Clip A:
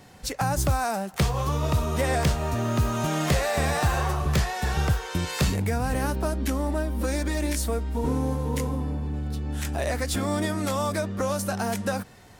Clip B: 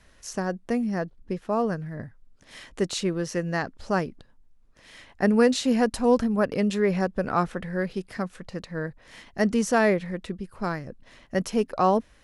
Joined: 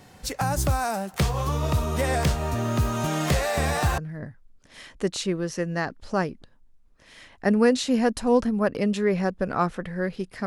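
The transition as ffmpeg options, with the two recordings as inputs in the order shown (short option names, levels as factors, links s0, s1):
-filter_complex "[0:a]apad=whole_dur=10.46,atrim=end=10.46,atrim=end=3.982[s0];[1:a]atrim=start=1.748:end=8.23[s1];[s0][s1]acrossfade=d=0.004:c1=hsin:c2=hsin"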